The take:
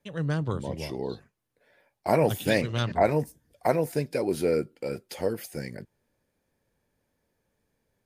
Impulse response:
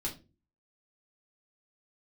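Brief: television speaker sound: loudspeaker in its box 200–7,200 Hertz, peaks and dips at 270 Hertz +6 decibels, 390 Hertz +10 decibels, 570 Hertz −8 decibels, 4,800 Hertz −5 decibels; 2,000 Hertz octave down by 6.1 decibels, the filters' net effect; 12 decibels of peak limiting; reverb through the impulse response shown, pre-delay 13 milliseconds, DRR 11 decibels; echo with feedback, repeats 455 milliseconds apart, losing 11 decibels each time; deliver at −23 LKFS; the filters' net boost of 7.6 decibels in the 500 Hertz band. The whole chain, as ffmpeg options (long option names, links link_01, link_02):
-filter_complex "[0:a]equalizer=frequency=500:width_type=o:gain=7.5,equalizer=frequency=2000:width_type=o:gain=-8,alimiter=limit=-17dB:level=0:latency=1,aecho=1:1:455|910|1365:0.282|0.0789|0.0221,asplit=2[link_01][link_02];[1:a]atrim=start_sample=2205,adelay=13[link_03];[link_02][link_03]afir=irnorm=-1:irlink=0,volume=-12.5dB[link_04];[link_01][link_04]amix=inputs=2:normalize=0,highpass=frequency=200:width=0.5412,highpass=frequency=200:width=1.3066,equalizer=frequency=270:width_type=q:width=4:gain=6,equalizer=frequency=390:width_type=q:width=4:gain=10,equalizer=frequency=570:width_type=q:width=4:gain=-8,equalizer=frequency=4800:width_type=q:width=4:gain=-5,lowpass=frequency=7200:width=0.5412,lowpass=frequency=7200:width=1.3066,volume=3dB"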